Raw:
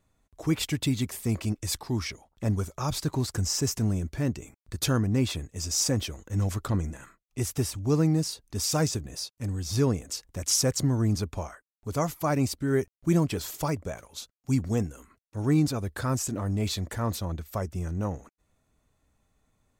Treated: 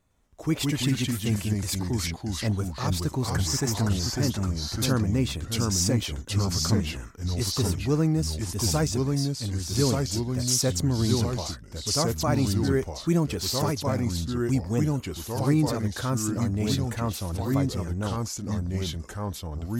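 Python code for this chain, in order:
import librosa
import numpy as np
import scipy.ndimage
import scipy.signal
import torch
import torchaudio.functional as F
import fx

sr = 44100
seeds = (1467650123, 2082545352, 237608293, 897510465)

y = fx.spec_box(x, sr, start_s=3.28, length_s=0.57, low_hz=600.0, high_hz=2400.0, gain_db=8)
y = fx.echo_pitch(y, sr, ms=107, semitones=-2, count=2, db_per_echo=-3.0)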